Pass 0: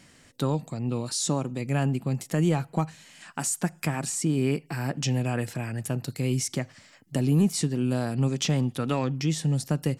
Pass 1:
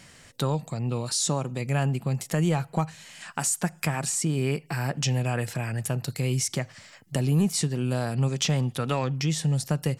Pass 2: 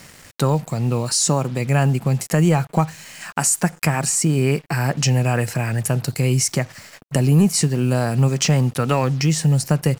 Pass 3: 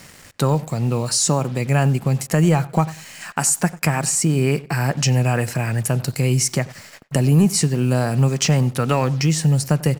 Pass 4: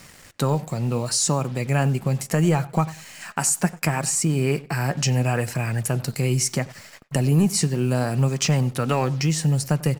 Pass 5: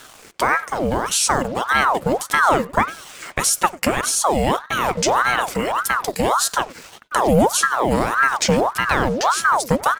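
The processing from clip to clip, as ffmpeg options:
ffmpeg -i in.wav -filter_complex "[0:a]equalizer=frequency=280:width_type=o:width=0.82:gain=-7.5,asplit=2[link_01][link_02];[link_02]acompressor=threshold=-34dB:ratio=6,volume=-2dB[link_03];[link_01][link_03]amix=inputs=2:normalize=0" out.wav
ffmpeg -i in.wav -af "equalizer=frequency=3500:width_type=o:width=0.25:gain=-11.5,acrusher=bits=7:mix=0:aa=0.5,volume=8dB" out.wav
ffmpeg -i in.wav -filter_complex "[0:a]asplit=2[link_01][link_02];[link_02]adelay=95,lowpass=frequency=2700:poles=1,volume=-19.5dB,asplit=2[link_03][link_04];[link_04]adelay=95,lowpass=frequency=2700:poles=1,volume=0.24[link_05];[link_01][link_03][link_05]amix=inputs=3:normalize=0" out.wav
ffmpeg -i in.wav -af "flanger=delay=0.8:depth=4.7:regen=78:speed=0.71:shape=sinusoidal,volume=1.5dB" out.wav
ffmpeg -i in.wav -af "aeval=exprs='val(0)*sin(2*PI*910*n/s+910*0.65/1.7*sin(2*PI*1.7*n/s))':channel_layout=same,volume=6dB" out.wav

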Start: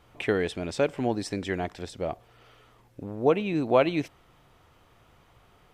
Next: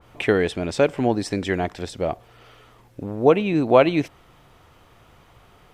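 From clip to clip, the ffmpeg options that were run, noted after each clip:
ffmpeg -i in.wav -af "adynamicequalizer=threshold=0.01:dfrequency=2300:dqfactor=0.7:tfrequency=2300:tqfactor=0.7:attack=5:release=100:ratio=0.375:range=2:mode=cutabove:tftype=highshelf,volume=6.5dB" out.wav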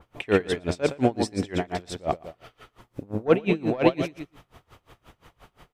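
ffmpeg -i in.wav -af "asoftclip=type=tanh:threshold=-5dB,aecho=1:1:116|232|348:0.447|0.125|0.035,aeval=exprs='val(0)*pow(10,-27*(0.5-0.5*cos(2*PI*5.7*n/s))/20)':channel_layout=same,volume=3.5dB" out.wav

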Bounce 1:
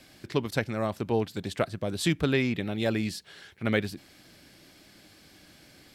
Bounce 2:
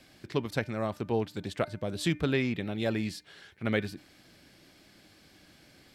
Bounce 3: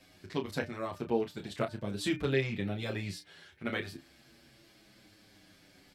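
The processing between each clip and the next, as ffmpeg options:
ffmpeg -i in.wav -af "highshelf=frequency=6300:gain=-4.5,bandreject=frequency=300.1:width_type=h:width=4,bandreject=frequency=600.2:width_type=h:width=4,bandreject=frequency=900.3:width_type=h:width=4,bandreject=frequency=1200.4:width_type=h:width=4,bandreject=frequency=1500.5:width_type=h:width=4,bandreject=frequency=1800.6:width_type=h:width=4,bandreject=frequency=2100.7:width_type=h:width=4,bandreject=frequency=2400.8:width_type=h:width=4,volume=-2.5dB" out.wav
ffmpeg -i in.wav -filter_complex "[0:a]asplit=2[link_01][link_02];[link_02]adelay=30,volume=-8dB[link_03];[link_01][link_03]amix=inputs=2:normalize=0,asplit=2[link_04][link_05];[link_05]adelay=7.6,afreqshift=-0.35[link_06];[link_04][link_06]amix=inputs=2:normalize=1" out.wav

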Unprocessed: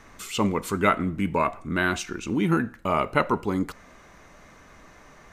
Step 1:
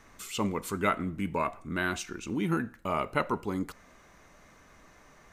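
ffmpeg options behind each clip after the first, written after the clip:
ffmpeg -i in.wav -af "highshelf=frequency=6900:gain=5,volume=-6.5dB" out.wav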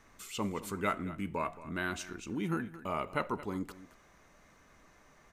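ffmpeg -i in.wav -af "aecho=1:1:223:0.158,volume=-5dB" out.wav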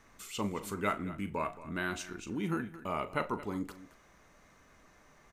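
ffmpeg -i in.wav -filter_complex "[0:a]asplit=2[link_01][link_02];[link_02]adelay=39,volume=-13dB[link_03];[link_01][link_03]amix=inputs=2:normalize=0" out.wav

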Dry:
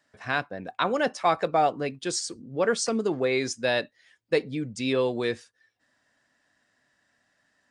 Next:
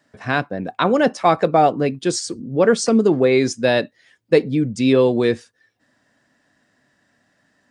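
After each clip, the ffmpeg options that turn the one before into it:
ffmpeg -i in.wav -af "equalizer=frequency=200:width_type=o:width=3:gain=8.5,volume=4.5dB" out.wav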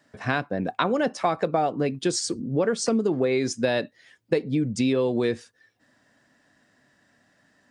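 ffmpeg -i in.wav -af "acompressor=threshold=-20dB:ratio=6" out.wav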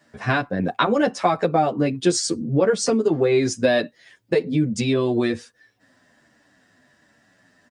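ffmpeg -i in.wav -filter_complex "[0:a]asplit=2[link_01][link_02];[link_02]adelay=9.6,afreqshift=-1.3[link_03];[link_01][link_03]amix=inputs=2:normalize=1,volume=7dB" out.wav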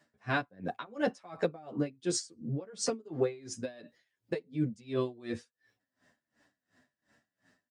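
ffmpeg -i in.wav -af "aeval=exprs='val(0)*pow(10,-26*(0.5-0.5*cos(2*PI*2.8*n/s))/20)':channel_layout=same,volume=-7.5dB" out.wav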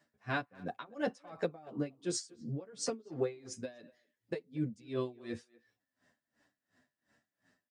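ffmpeg -i in.wav -filter_complex "[0:a]asplit=2[link_01][link_02];[link_02]adelay=240,highpass=300,lowpass=3400,asoftclip=type=hard:threshold=-24dB,volume=-22dB[link_03];[link_01][link_03]amix=inputs=2:normalize=0,volume=-4dB" out.wav

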